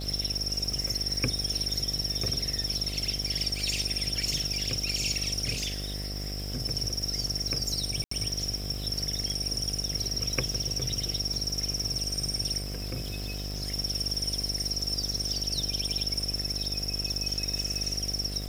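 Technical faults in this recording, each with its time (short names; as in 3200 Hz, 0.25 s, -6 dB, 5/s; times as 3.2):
buzz 50 Hz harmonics 15 -36 dBFS
crackle 420/s -37 dBFS
8.04–8.11 gap 74 ms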